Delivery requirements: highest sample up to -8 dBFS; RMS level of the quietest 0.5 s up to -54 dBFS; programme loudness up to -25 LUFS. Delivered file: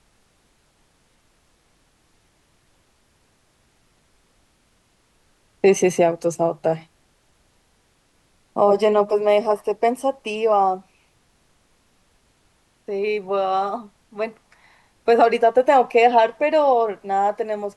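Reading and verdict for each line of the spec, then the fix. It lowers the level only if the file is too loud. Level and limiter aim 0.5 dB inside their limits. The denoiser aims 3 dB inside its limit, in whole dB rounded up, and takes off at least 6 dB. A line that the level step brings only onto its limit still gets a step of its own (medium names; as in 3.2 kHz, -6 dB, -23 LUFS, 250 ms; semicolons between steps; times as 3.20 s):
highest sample -4.5 dBFS: fail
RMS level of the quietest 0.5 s -62 dBFS: pass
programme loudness -19.5 LUFS: fail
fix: trim -6 dB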